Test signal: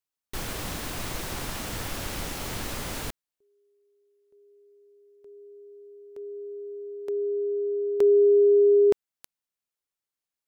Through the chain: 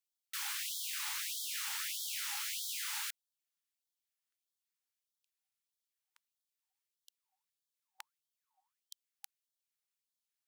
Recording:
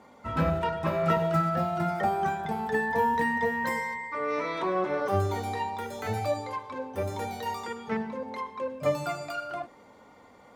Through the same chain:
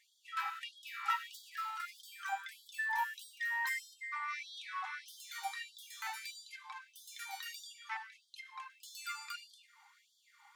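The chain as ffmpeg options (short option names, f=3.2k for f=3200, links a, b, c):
-af "lowshelf=f=710:t=q:w=3:g=10.5,afftfilt=real='re*gte(b*sr/1024,770*pow(3200/770,0.5+0.5*sin(2*PI*1.6*pts/sr)))':imag='im*gte(b*sr/1024,770*pow(3200/770,0.5+0.5*sin(2*PI*1.6*pts/sr)))':win_size=1024:overlap=0.75,volume=-1dB"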